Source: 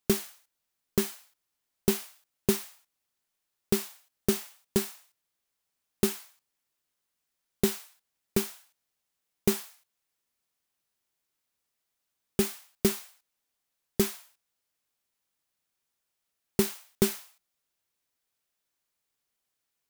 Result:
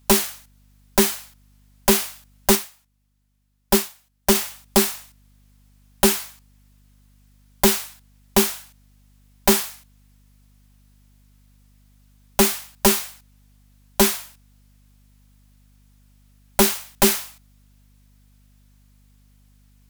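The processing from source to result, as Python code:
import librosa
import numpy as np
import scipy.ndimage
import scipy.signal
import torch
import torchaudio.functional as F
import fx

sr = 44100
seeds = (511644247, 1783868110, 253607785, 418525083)

y = fx.fold_sine(x, sr, drive_db=12, ceiling_db=-8.5)
y = fx.add_hum(y, sr, base_hz=50, snr_db=30)
y = fx.upward_expand(y, sr, threshold_db=-38.0, expansion=1.5, at=(2.55, 4.35))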